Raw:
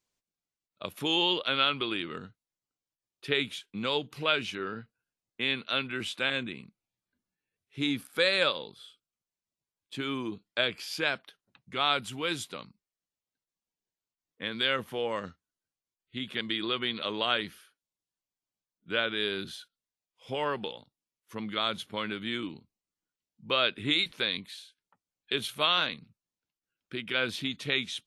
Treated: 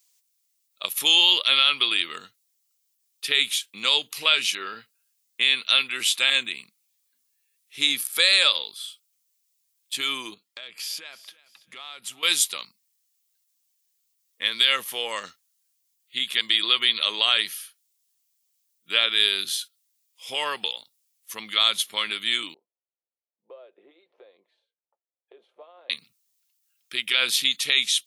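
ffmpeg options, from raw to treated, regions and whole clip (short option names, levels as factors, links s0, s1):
-filter_complex "[0:a]asettb=1/sr,asplit=3[s0][s1][s2];[s0]atrim=end=10.344[s3];[s1]atrim=start=10.34:end=12.23,asetpts=PTS-STARTPTS,afade=t=in:d=0.004:c=qsin,afade=t=out:st=1.886:d=0.004:c=qsin,highshelf=f=2300:g=-9.5,acompressor=threshold=0.00631:ratio=6:attack=3.2:release=140:knee=1:detection=peak,aecho=1:1:332|664|996:0.119|0.0416|0.0146,atrim=end_sample=83349[s4];[s2]atrim=start=12.226[s5];[s3][s4]acrossfade=d=0.004:c1=hsin:c2=qsin[s6];[s6][s5]acrossfade=d=0.004:c1=qsin:c2=hsin,asettb=1/sr,asplit=3[s7][s8][s9];[s7]atrim=end=22.544[s10];[s8]atrim=start=22.54:end=25.9,asetpts=PTS-STARTPTS,afade=t=in:d=0.004:c=qsin,afade=t=out:st=3.356:d=0.004:c=qsin,aecho=1:1:5.7:0.35,atrim=end_sample=148176,acompressor=threshold=0.0178:ratio=4:attack=3.2:release=140:knee=1:detection=peak,asuperpass=centerf=520:order=4:qfactor=1.7[s11];[s9]atrim=start=25.896[s12];[s10][s11]acrossfade=d=0.004:c1=hsin:c2=qsin[s13];[s13][s12]acrossfade=d=0.004:c1=qsin:c2=hsin,aderivative,bandreject=f=1500:w=9.7,alimiter=level_in=18.8:limit=0.891:release=50:level=0:latency=1,volume=0.531"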